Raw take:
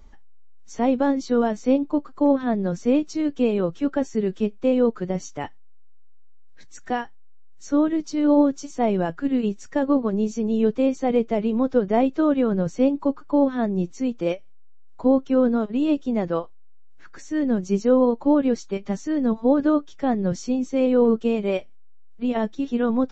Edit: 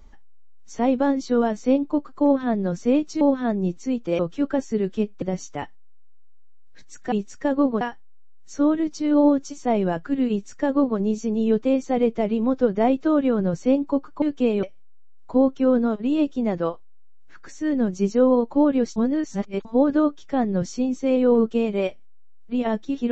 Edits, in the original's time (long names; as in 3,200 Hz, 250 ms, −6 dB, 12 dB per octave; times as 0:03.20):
0:03.21–0:03.62: swap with 0:13.35–0:14.33
0:04.65–0:05.04: remove
0:09.43–0:10.12: duplicate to 0:06.94
0:18.66–0:19.35: reverse